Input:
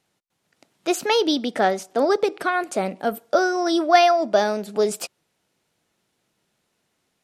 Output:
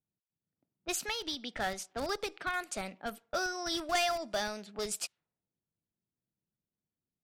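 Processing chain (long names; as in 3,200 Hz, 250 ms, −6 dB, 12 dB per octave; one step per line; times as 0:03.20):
in parallel at −9.5 dB: comparator with hysteresis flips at −16.5 dBFS
on the sum: guitar amp tone stack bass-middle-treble 5-5-5
0:01.04–0:01.60: downward compressor 6 to 1, threshold −34 dBFS, peak gain reduction 7.5 dB
low-pass that shuts in the quiet parts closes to 340 Hz, open at −34.5 dBFS
sine wavefolder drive 7 dB, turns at −14 dBFS
level −9 dB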